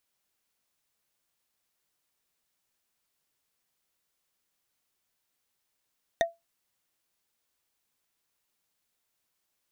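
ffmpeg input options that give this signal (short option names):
-f lavfi -i "aevalsrc='0.133*pow(10,-3*t/0.19)*sin(2*PI*674*t)+0.0891*pow(10,-3*t/0.056)*sin(2*PI*1858.2*t)+0.0596*pow(10,-3*t/0.025)*sin(2*PI*3642.3*t)+0.0398*pow(10,-3*t/0.014)*sin(2*PI*6020.8*t)+0.0266*pow(10,-3*t/0.008)*sin(2*PI*8991.2*t)':d=0.45:s=44100"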